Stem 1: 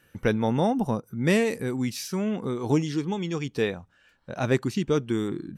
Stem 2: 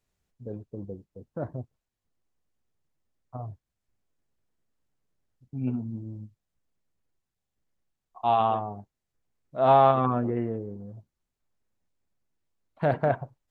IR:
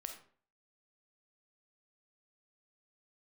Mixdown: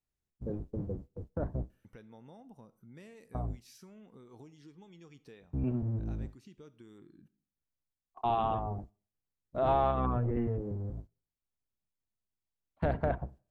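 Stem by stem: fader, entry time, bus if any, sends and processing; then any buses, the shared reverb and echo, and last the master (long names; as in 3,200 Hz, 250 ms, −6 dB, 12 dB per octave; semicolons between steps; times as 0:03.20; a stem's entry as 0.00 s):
−20.0 dB, 1.70 s, send −5 dB, downward compressor 4 to 1, threshold −35 dBFS, peak gain reduction 15 dB
−0.5 dB, 0.00 s, send −21.5 dB, sub-octave generator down 1 octave, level +2 dB; noise gate −46 dBFS, range −14 dB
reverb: on, RT60 0.50 s, pre-delay 5 ms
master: downward compressor 2 to 1, threshold −32 dBFS, peak gain reduction 10 dB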